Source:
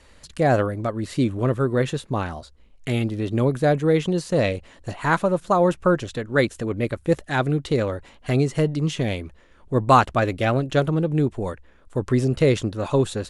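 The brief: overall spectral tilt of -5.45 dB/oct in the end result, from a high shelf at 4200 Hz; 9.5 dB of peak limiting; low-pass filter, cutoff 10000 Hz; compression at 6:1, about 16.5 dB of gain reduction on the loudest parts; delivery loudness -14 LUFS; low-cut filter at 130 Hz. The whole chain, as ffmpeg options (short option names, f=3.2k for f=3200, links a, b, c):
-af "highpass=130,lowpass=10k,highshelf=f=4.2k:g=4.5,acompressor=threshold=-27dB:ratio=6,volume=21dB,alimiter=limit=-2dB:level=0:latency=1"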